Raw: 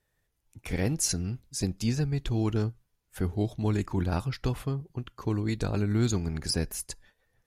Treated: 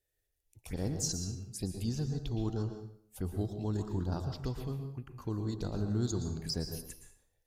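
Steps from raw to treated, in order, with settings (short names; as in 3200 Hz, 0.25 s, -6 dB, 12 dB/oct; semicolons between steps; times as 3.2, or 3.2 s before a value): high shelf 9000 Hz +7 dB; envelope phaser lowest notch 180 Hz, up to 2300 Hz, full sweep at -26 dBFS; plate-style reverb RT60 0.62 s, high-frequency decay 0.8×, pre-delay 0.105 s, DRR 5.5 dB; gain -7 dB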